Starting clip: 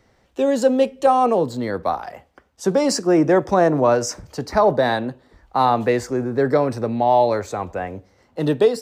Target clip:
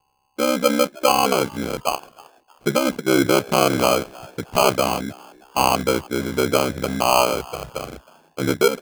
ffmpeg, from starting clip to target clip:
ffmpeg -i in.wav -filter_complex "[0:a]aeval=exprs='val(0)+0.00398*sin(2*PI*810*n/s)':channel_layout=same,aeval=exprs='val(0)*sin(2*PI*33*n/s)':channel_layout=same,afwtdn=0.0708,acrusher=samples=24:mix=1:aa=0.000001,asplit=4[link_01][link_02][link_03][link_04];[link_02]adelay=314,afreqshift=100,volume=-23dB[link_05];[link_03]adelay=628,afreqshift=200,volume=-31.4dB[link_06];[link_04]adelay=942,afreqshift=300,volume=-39.8dB[link_07];[link_01][link_05][link_06][link_07]amix=inputs=4:normalize=0,volume=1.5dB" out.wav

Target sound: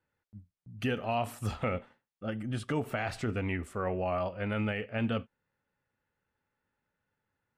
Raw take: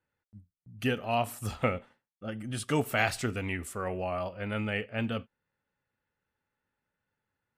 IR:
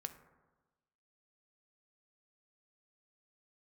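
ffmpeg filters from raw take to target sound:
-af "asetnsamples=nb_out_samples=441:pad=0,asendcmd='2.43 lowpass f 1700;4.06 lowpass f 3300',lowpass=frequency=3900:poles=1,alimiter=limit=-24dB:level=0:latency=1:release=51,volume=2dB"

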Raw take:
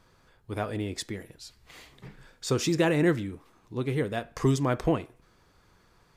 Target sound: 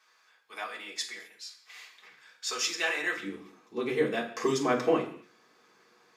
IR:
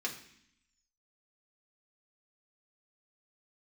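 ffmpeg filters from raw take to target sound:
-filter_complex "[0:a]asetnsamples=nb_out_samples=441:pad=0,asendcmd='3.23 highpass f 300',highpass=1100[link_01];[1:a]atrim=start_sample=2205,afade=type=out:start_time=0.32:duration=0.01,atrim=end_sample=14553[link_02];[link_01][link_02]afir=irnorm=-1:irlink=0"

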